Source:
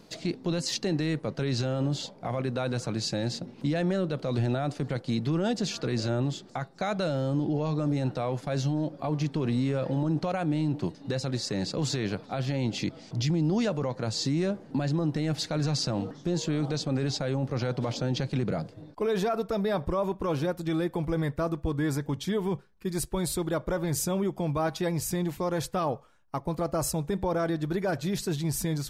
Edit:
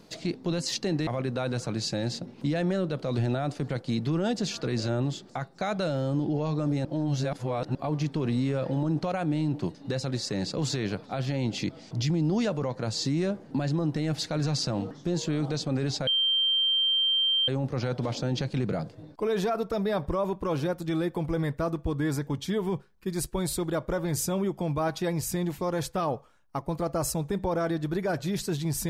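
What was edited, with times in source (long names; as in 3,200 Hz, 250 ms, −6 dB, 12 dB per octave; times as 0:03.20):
0:01.07–0:02.27: remove
0:08.05–0:08.95: reverse
0:17.27: insert tone 3,150 Hz −21.5 dBFS 1.41 s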